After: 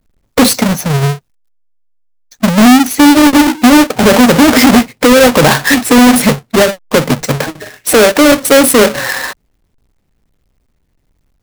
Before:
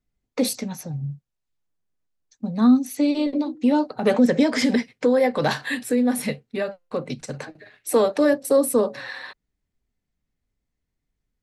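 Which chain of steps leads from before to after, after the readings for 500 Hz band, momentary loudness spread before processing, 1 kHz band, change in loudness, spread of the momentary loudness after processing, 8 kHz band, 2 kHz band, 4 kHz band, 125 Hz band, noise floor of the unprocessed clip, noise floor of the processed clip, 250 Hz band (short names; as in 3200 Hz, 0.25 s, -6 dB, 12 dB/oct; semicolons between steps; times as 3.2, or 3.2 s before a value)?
+11.5 dB, 16 LU, +18.0 dB, +13.5 dB, 11 LU, +19.0 dB, +18.5 dB, +19.5 dB, +17.0 dB, -81 dBFS, -61 dBFS, +13.5 dB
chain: half-waves squared off; maximiser +15.5 dB; gain -1 dB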